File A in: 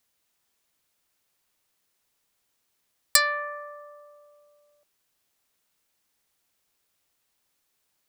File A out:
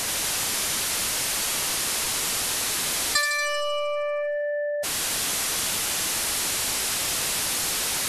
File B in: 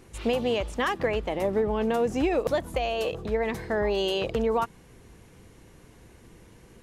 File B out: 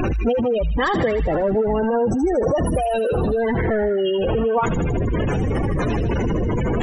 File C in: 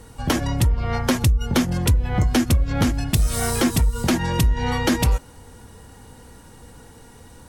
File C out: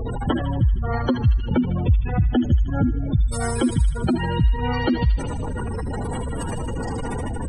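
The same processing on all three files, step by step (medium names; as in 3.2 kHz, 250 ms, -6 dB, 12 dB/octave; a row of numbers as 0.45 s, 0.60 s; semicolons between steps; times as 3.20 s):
one-bit delta coder 64 kbps, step -18.5 dBFS; spectral gate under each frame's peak -15 dB strong; feedback echo behind a high-pass 78 ms, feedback 67%, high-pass 2.4 kHz, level -5.5 dB; peak normalisation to -9 dBFS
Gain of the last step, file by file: -1.5 dB, +6.0 dB, 0.0 dB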